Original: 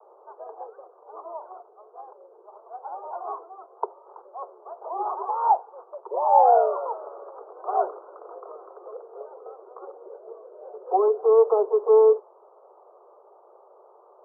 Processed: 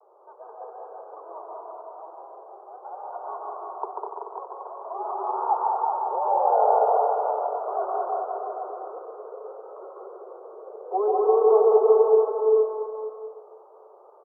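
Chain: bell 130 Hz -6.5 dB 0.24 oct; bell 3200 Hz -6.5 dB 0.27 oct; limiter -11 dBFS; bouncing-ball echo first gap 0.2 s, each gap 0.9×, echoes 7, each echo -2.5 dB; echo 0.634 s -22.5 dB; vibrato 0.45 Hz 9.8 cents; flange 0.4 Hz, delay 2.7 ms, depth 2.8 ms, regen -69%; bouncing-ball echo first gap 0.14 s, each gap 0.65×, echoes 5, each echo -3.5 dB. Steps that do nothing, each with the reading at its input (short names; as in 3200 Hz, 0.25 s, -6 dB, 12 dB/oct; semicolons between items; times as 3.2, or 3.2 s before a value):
bell 130 Hz: input band starts at 340 Hz; bell 3200 Hz: input band ends at 1400 Hz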